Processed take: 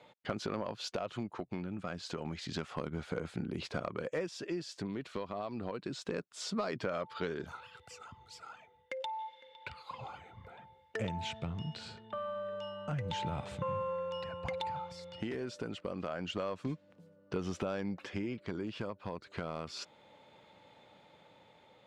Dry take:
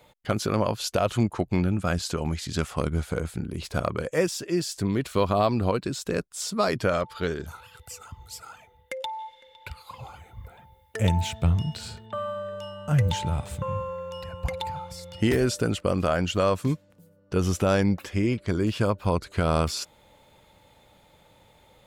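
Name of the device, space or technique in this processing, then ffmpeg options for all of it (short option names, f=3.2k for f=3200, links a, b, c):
AM radio: -af "highpass=160,lowpass=4.2k,acompressor=threshold=-29dB:ratio=10,asoftclip=type=tanh:threshold=-20.5dB,tremolo=f=0.29:d=0.34,volume=-1.5dB"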